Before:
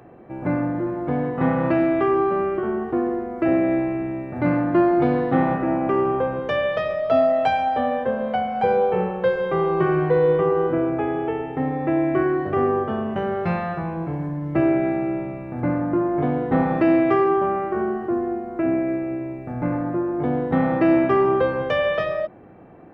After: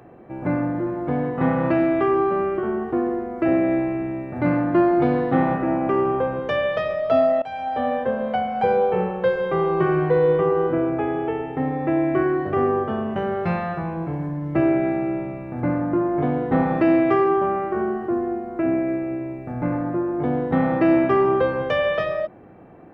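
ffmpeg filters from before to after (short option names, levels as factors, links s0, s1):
-filter_complex "[0:a]asplit=2[s0][s1];[s0]atrim=end=7.42,asetpts=PTS-STARTPTS,afade=t=out:st=7.416:d=0.004:c=hsin:silence=0.0891251[s2];[s1]atrim=start=7.42,asetpts=PTS-STARTPTS,afade=t=in:d=0.47:silence=0.0891251[s3];[s2][s3]concat=n=2:v=0:a=1"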